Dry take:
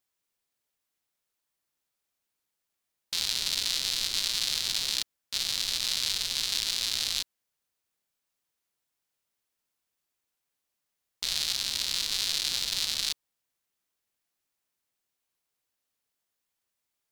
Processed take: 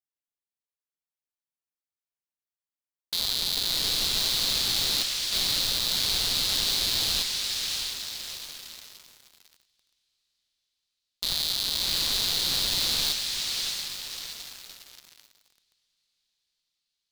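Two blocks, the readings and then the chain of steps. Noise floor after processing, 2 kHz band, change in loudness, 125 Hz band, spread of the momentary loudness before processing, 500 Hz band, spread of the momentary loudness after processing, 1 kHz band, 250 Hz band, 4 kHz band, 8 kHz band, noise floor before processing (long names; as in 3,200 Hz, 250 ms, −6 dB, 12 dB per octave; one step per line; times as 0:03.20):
below −85 dBFS, +2.5 dB, +3.0 dB, +10.0 dB, 5 LU, +10.0 dB, 13 LU, +7.0 dB, +10.0 dB, +4.0 dB, +2.5 dB, −84 dBFS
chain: feedback delay with all-pass diffusion 651 ms, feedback 55%, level −12 dB
leveller curve on the samples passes 5
level −7 dB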